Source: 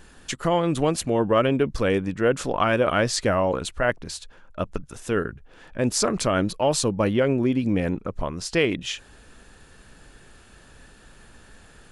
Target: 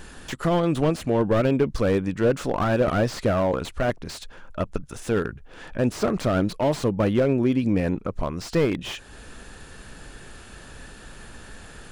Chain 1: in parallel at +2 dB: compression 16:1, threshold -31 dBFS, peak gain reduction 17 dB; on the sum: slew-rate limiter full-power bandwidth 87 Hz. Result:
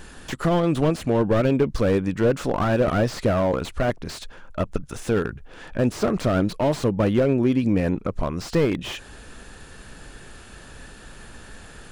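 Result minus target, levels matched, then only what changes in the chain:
compression: peak gain reduction -9.5 dB
change: compression 16:1, threshold -41 dBFS, peak gain reduction 26.5 dB

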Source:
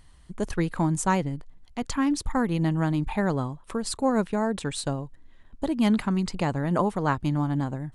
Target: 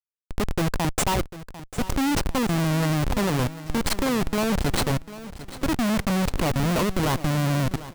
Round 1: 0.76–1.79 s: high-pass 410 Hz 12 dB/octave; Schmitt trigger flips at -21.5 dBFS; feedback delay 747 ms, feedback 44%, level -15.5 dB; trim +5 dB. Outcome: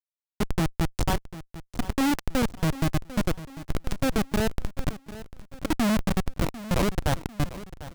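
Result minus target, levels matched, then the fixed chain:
Schmitt trigger: distortion +8 dB
0.76–1.79 s: high-pass 410 Hz 12 dB/octave; Schmitt trigger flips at -29 dBFS; feedback delay 747 ms, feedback 44%, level -15.5 dB; trim +5 dB

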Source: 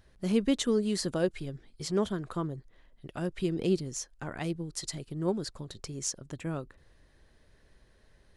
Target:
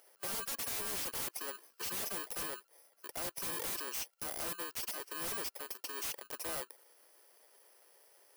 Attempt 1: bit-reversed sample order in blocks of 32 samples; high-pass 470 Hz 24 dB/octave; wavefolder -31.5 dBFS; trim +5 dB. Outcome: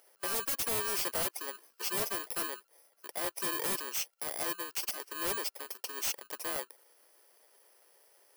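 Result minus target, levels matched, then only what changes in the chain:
wavefolder: distortion -8 dB
change: wavefolder -38 dBFS

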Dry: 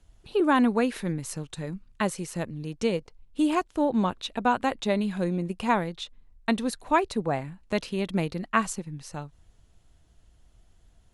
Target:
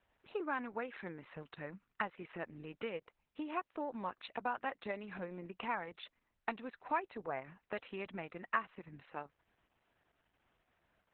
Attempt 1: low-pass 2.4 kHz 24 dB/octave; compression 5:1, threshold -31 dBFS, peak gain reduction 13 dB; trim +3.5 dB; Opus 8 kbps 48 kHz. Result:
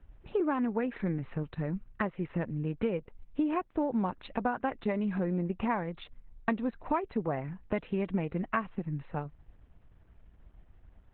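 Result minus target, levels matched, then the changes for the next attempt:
1 kHz band -4.5 dB
add after compression: high-pass 1.3 kHz 6 dB/octave

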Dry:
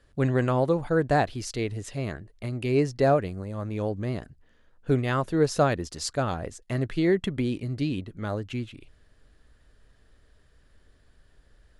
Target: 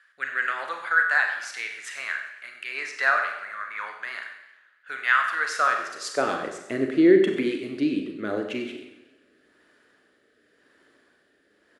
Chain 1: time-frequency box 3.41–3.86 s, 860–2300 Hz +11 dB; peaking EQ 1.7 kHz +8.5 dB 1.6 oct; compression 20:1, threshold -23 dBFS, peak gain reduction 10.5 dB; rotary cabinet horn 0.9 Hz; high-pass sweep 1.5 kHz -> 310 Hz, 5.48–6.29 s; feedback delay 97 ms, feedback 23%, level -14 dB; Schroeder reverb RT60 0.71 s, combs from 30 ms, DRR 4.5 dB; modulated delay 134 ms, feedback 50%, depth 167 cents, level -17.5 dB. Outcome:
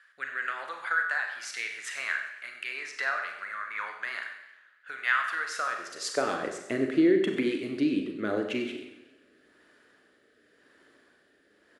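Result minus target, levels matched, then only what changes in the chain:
compression: peak gain reduction +10.5 dB
remove: compression 20:1, threshold -23 dBFS, peak gain reduction 10.5 dB

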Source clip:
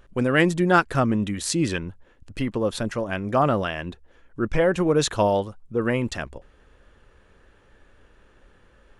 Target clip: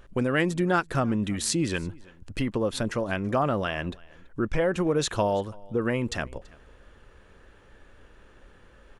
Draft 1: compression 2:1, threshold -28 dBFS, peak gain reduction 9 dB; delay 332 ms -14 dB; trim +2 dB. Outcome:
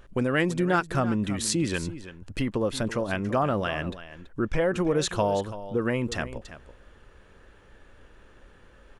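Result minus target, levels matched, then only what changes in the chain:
echo-to-direct +10.5 dB
change: delay 332 ms -24.5 dB

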